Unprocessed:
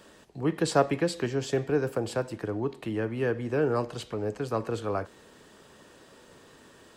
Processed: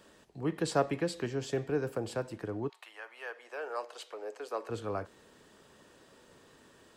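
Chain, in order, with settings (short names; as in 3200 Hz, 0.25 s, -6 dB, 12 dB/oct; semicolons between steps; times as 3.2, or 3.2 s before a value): 2.68–4.69 HPF 880 Hz -> 370 Hz 24 dB/oct; gain -5.5 dB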